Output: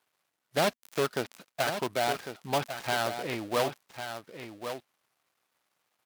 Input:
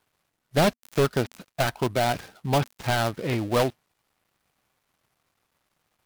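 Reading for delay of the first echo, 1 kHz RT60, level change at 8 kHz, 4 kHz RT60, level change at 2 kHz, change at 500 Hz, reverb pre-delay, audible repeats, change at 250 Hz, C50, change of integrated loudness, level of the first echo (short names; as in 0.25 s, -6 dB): 1.1 s, none, -2.5 dB, none, -3.0 dB, -5.0 dB, none, 1, -9.0 dB, none, -6.0 dB, -9.0 dB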